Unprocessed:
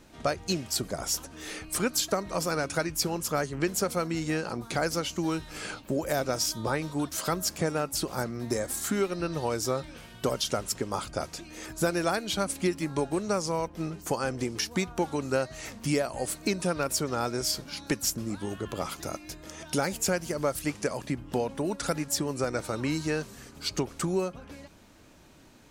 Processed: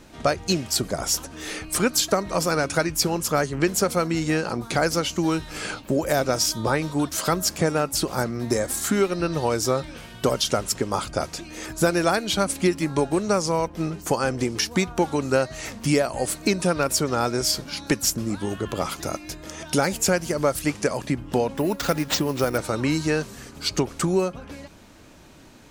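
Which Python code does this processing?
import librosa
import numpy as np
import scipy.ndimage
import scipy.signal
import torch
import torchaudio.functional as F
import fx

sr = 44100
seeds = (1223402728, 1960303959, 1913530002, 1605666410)

y = fx.high_shelf(x, sr, hz=12000.0, db=-3.0)
y = fx.resample_bad(y, sr, factor=4, down='none', up='hold', at=(21.57, 22.58))
y = y * librosa.db_to_amplitude(6.5)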